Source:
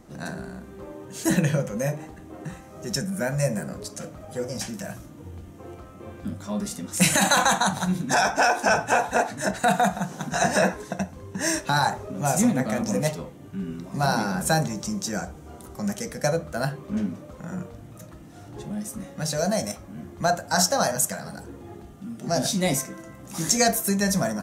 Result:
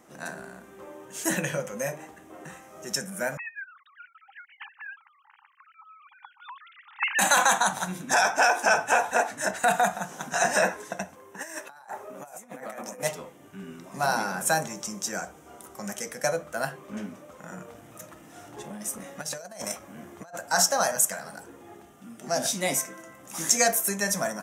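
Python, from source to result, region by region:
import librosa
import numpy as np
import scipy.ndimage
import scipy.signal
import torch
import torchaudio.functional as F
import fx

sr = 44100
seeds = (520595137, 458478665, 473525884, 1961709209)

y = fx.chain(x, sr, fx.sine_speech(),
    fx.brickwall_highpass(low_hz=790.0), at=(3.37, 7.19))
y = fx.chain(y, sr, fx.highpass(hz=740.0, slope=6),
    fx.peak_eq(hz=4800.0, db=-11.0, octaves=2.8),
    fx.over_compress(threshold_db=-36.0, ratio=-0.5), at=(11.15, 13.03))
y = fx.chain(y, sr, fx.over_compress(threshold_db=-30.0, ratio=-0.5),
    fx.transformer_sat(knee_hz=850.0), at=(17.68, 20.37))
y = fx.highpass(y, sr, hz=740.0, slope=6)
y = fx.peak_eq(y, sr, hz=4300.0, db=-8.5, octaves=0.4)
y = y * librosa.db_to_amplitude(1.5)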